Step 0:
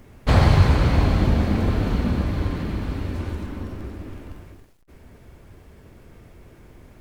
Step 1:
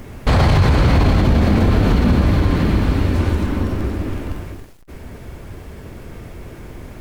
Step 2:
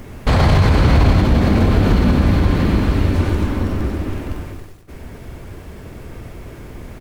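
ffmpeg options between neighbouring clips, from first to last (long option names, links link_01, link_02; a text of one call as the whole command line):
ffmpeg -i in.wav -filter_complex "[0:a]asplit=2[link_01][link_02];[link_02]acompressor=threshold=-27dB:ratio=6,volume=-2dB[link_03];[link_01][link_03]amix=inputs=2:normalize=0,alimiter=limit=-13.5dB:level=0:latency=1:release=25,volume=7.5dB" out.wav
ffmpeg -i in.wav -af "aecho=1:1:95|190|285|380|475|570:0.282|0.152|0.0822|0.0444|0.024|0.0129" out.wav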